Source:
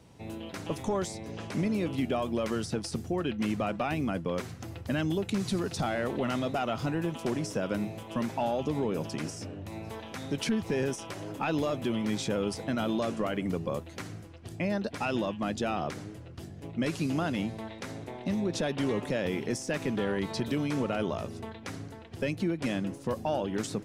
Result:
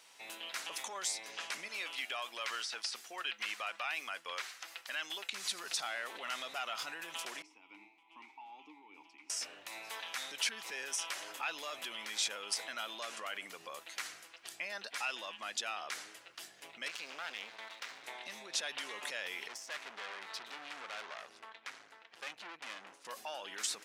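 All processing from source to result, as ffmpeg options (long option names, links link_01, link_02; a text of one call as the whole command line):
ffmpeg -i in.wav -filter_complex "[0:a]asettb=1/sr,asplit=3[link_01][link_02][link_03];[link_01]atrim=end=1.684[link_04];[link_02]atrim=start=1.68:end=5.33,asetpts=PTS-STARTPTS,afade=type=in:duration=0.004:curve=qsin,afade=type=out:start_time=3.646:duration=0.004:curve=qsin,acrossover=split=5400[link_05][link_06];[link_06]acompressor=threshold=-59dB:ratio=4:attack=1:release=60[link_07];[link_05][link_07]amix=inputs=2:normalize=0,equalizer=frequency=120:width=0.35:gain=-13.5[link_08];[link_03]atrim=start=5.326[link_09];[link_04][link_08]acrossfade=duration=0.004:curve1=hsin:curve2=qsin[link_10];[link_10][link_09]acrossfade=duration=0.004:curve1=qsin:curve2=hsin,asettb=1/sr,asplit=3[link_11][link_12][link_13];[link_11]atrim=end=7.424[link_14];[link_12]atrim=start=7.42:end=9.3,asetpts=PTS-STARTPTS,afade=type=in:duration=0.004:curve=qsin,afade=type=out:start_time=1.876:duration=0.004:curve=qsin,tremolo=f=2.5:d=0.51,asplit=3[link_15][link_16][link_17];[link_15]bandpass=frequency=300:width_type=q:width=8,volume=0dB[link_18];[link_16]bandpass=frequency=870:width_type=q:width=8,volume=-6dB[link_19];[link_17]bandpass=frequency=2240:width_type=q:width=8,volume=-9dB[link_20];[link_18][link_19][link_20]amix=inputs=3:normalize=0[link_21];[link_13]atrim=start=9.296[link_22];[link_14][link_21]acrossfade=duration=0.004:curve1=hsin:curve2=qsin[link_23];[link_23][link_22]acrossfade=duration=0.004:curve1=qsin:curve2=hsin,asettb=1/sr,asplit=3[link_24][link_25][link_26];[link_24]atrim=end=16.884[link_27];[link_25]atrim=start=16.88:end=18.04,asetpts=PTS-STARTPTS,afade=type=in:duration=0.004:curve=qsin,afade=type=out:start_time=1.156:duration=0.004:curve=qsin,lowpass=4400,aeval=exprs='max(val(0),0)':channel_layout=same[link_28];[link_26]atrim=start=18.036[link_29];[link_27][link_28]acrossfade=duration=0.004:curve1=hsin:curve2=qsin[link_30];[link_30][link_29]acrossfade=duration=0.004:curve1=qsin:curve2=hsin,asettb=1/sr,asplit=3[link_31][link_32][link_33];[link_31]atrim=end=19.484[link_34];[link_32]atrim=start=19.48:end=23.05,asetpts=PTS-STARTPTS,afade=type=in:duration=0.004:curve=qsin,afade=type=out:start_time=3.566:duration=0.004:curve=qsin,aemphasis=mode=reproduction:type=75kf,aeval=exprs='(tanh(70.8*val(0)+0.8)-tanh(0.8))/70.8':channel_layout=same[link_35];[link_33]atrim=start=23.046[link_36];[link_34][link_35]acrossfade=duration=0.004:curve1=hsin:curve2=qsin[link_37];[link_37][link_36]acrossfade=duration=0.004:curve1=qsin:curve2=hsin,alimiter=level_in=4dB:limit=-24dB:level=0:latency=1:release=49,volume=-4dB,highpass=1500,volume=6.5dB" out.wav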